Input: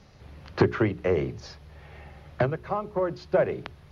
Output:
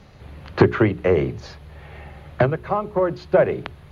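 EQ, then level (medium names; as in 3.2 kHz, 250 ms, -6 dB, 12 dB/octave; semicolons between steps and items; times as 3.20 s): peaking EQ 5.4 kHz -9 dB 0.4 oct; +6.5 dB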